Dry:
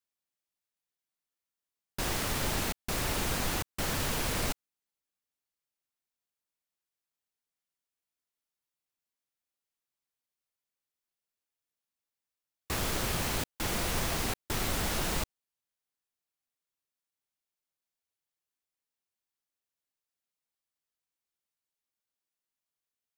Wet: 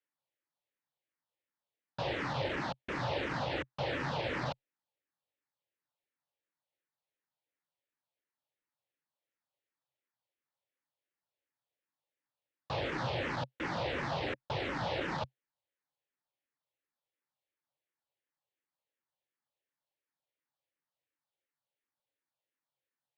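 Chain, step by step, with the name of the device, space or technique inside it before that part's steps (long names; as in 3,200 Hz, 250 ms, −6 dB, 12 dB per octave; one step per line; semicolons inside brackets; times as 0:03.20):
barber-pole phaser into a guitar amplifier (frequency shifter mixed with the dry sound −2.8 Hz; soft clipping −31 dBFS, distortion −14 dB; loudspeaker in its box 100–4,000 Hz, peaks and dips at 130 Hz +8 dB, 210 Hz −5 dB, 300 Hz +4 dB, 550 Hz +9 dB, 870 Hz +6 dB, 1,800 Hz +4 dB)
level +1.5 dB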